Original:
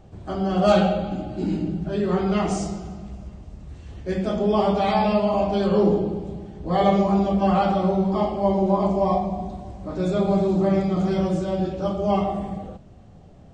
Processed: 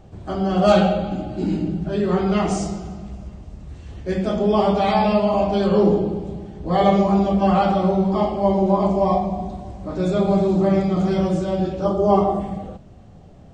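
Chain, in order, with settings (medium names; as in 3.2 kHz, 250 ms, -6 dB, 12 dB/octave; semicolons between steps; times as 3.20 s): 11.85–12.40 s: fifteen-band graphic EQ 400 Hz +7 dB, 1 kHz +5 dB, 2.5 kHz -11 dB; trim +2.5 dB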